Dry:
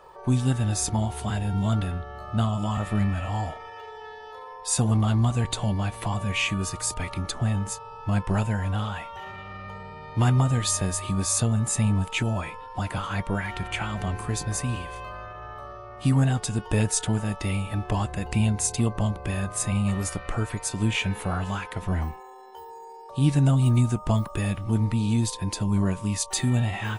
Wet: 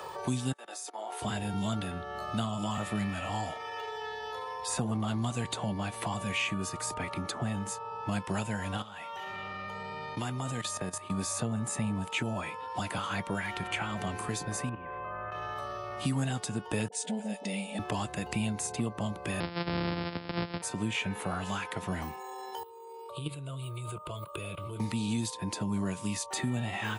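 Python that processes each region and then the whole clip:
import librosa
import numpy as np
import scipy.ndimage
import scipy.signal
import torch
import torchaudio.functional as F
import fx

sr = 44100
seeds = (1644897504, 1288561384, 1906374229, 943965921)

y = fx.chain(x, sr, fx.cheby2_highpass(hz=160.0, order=4, stop_db=50),
    fx.level_steps(step_db=20),
    fx.band_widen(depth_pct=100), at=(0.52, 1.22))
y = fx.chain(y, sr, fx.low_shelf(hz=150.0, db=-6.0),
    fx.level_steps(step_db=15), at=(8.77, 11.11))
y = fx.chain(y, sr, fx.lowpass(hz=2100.0, slope=24),
    fx.level_steps(step_db=10), at=(14.69, 15.32))
y = fx.chain(y, sr, fx.brickwall_bandpass(low_hz=180.0, high_hz=10000.0),
    fx.fixed_phaser(hz=330.0, stages=6),
    fx.dispersion(late='highs', ms=43.0, hz=550.0), at=(16.88, 17.79))
y = fx.chain(y, sr, fx.sample_sort(block=256),
    fx.brickwall_lowpass(high_hz=5400.0), at=(19.4, 20.62))
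y = fx.chain(y, sr, fx.level_steps(step_db=17),
    fx.fixed_phaser(hz=1200.0, stages=8), at=(22.63, 24.8))
y = scipy.signal.sosfilt(scipy.signal.butter(2, 150.0, 'highpass', fs=sr, output='sos'), y)
y = fx.band_squash(y, sr, depth_pct=70)
y = y * 10.0 ** (-4.5 / 20.0)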